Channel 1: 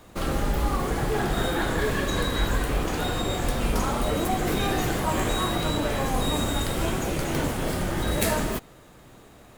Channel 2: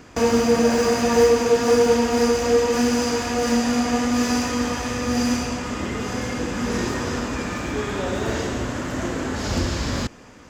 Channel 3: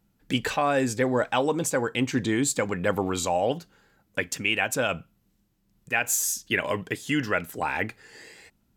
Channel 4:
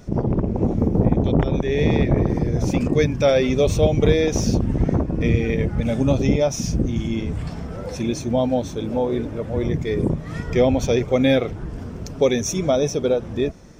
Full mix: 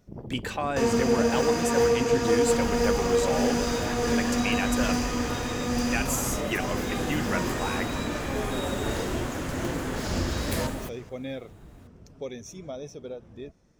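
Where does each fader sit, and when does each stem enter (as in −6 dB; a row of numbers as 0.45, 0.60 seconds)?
−8.5, −6.0, −5.5, −18.5 decibels; 2.30, 0.60, 0.00, 0.00 seconds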